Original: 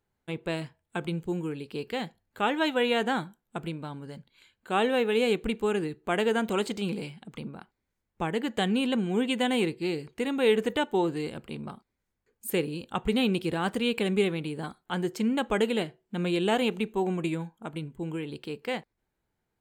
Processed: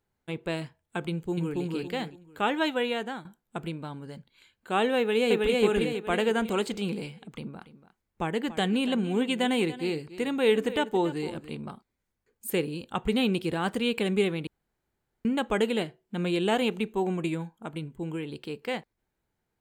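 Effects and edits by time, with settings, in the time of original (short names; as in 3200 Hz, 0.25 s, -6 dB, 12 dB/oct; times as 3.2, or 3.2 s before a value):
1.09–1.59 echo throw 0.28 s, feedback 30%, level -1 dB
2.61–3.25 fade out, to -12.5 dB
4.98–5.61 echo throw 0.32 s, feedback 45%, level -0.5 dB
7.27–11.55 echo 0.286 s -15 dB
14.47–15.25 room tone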